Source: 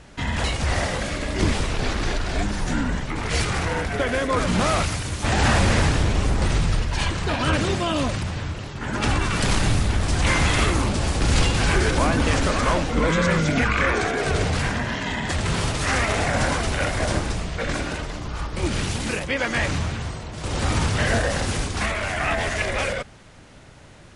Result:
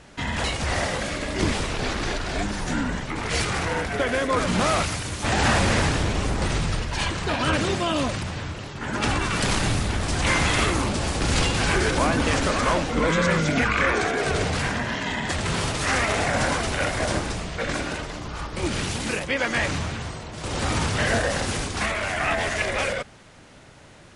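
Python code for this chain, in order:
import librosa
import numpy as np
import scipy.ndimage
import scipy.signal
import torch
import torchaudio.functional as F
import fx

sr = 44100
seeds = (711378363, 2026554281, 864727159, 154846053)

y = fx.low_shelf(x, sr, hz=110.0, db=-7.0)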